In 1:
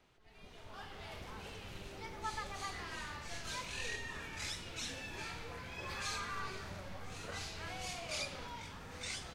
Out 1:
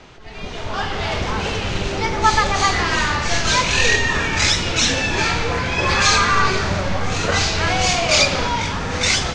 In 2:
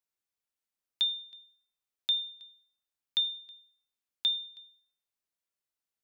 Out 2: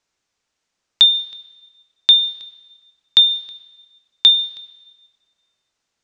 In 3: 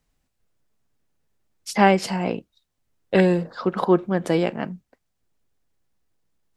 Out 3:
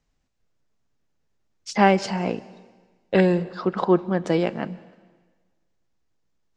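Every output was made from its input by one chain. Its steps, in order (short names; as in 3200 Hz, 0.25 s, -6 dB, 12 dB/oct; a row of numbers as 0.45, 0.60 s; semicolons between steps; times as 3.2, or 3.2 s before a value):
Chebyshev low-pass 6700 Hz, order 3; plate-style reverb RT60 1.4 s, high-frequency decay 1×, pre-delay 0.12 s, DRR 19.5 dB; normalise peaks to -2 dBFS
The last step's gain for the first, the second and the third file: +26.0, +18.5, -0.5 dB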